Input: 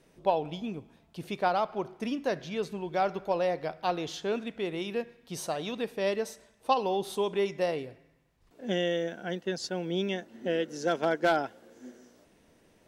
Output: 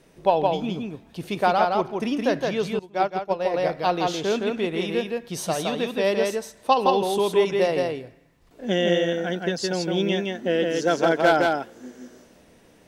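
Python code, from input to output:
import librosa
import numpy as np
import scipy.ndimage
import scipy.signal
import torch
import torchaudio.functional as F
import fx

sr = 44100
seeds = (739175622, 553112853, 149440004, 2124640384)

y = x + 10.0 ** (-3.0 / 20.0) * np.pad(x, (int(166 * sr / 1000.0), 0))[:len(x)]
y = fx.upward_expand(y, sr, threshold_db=-37.0, expansion=2.5, at=(2.79, 3.54))
y = y * librosa.db_to_amplitude(6.5)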